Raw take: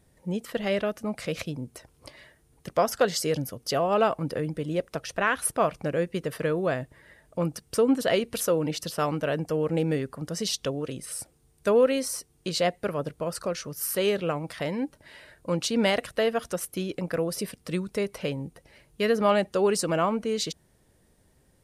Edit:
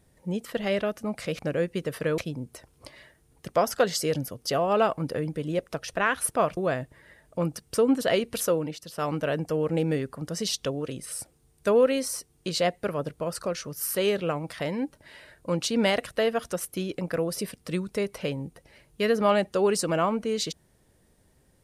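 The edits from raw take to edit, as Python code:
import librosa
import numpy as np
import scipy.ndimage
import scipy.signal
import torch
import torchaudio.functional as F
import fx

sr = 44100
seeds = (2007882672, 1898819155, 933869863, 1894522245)

y = fx.edit(x, sr, fx.move(start_s=5.78, length_s=0.79, to_s=1.39),
    fx.fade_down_up(start_s=8.51, length_s=0.63, db=-10.0, fade_s=0.28), tone=tone)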